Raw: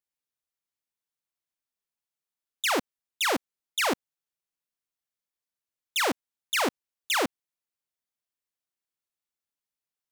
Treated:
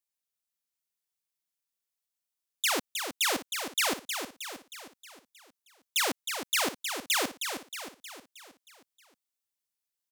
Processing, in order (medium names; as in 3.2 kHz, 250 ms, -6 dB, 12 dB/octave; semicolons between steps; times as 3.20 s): treble shelf 2.9 kHz +9.5 dB; on a send: feedback delay 314 ms, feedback 52%, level -7 dB; on the sum: trim -6 dB